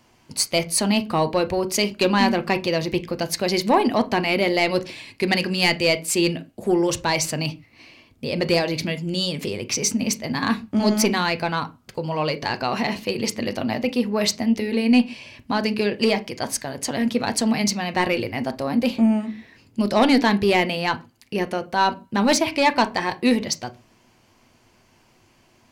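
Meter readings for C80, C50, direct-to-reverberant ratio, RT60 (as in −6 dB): 26.0 dB, 19.5 dB, 9.5 dB, non-exponential decay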